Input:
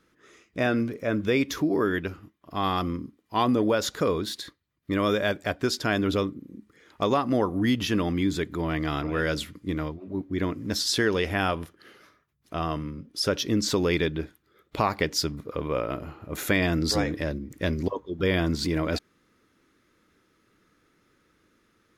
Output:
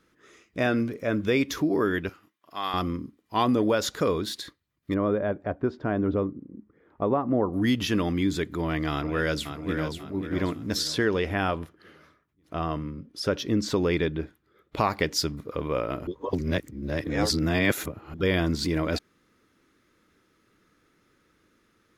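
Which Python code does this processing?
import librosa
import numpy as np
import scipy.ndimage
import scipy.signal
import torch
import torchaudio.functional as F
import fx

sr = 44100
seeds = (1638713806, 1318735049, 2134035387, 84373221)

y = fx.highpass(x, sr, hz=1100.0, slope=6, at=(2.09, 2.74))
y = fx.lowpass(y, sr, hz=1000.0, slope=12, at=(4.93, 7.52), fade=0.02)
y = fx.echo_throw(y, sr, start_s=8.91, length_s=1.08, ms=540, feedback_pct=40, wet_db=-7.5)
y = fx.high_shelf(y, sr, hz=3300.0, db=-8.5, at=(10.87, 14.77))
y = fx.edit(y, sr, fx.reverse_span(start_s=16.07, length_s=2.07), tone=tone)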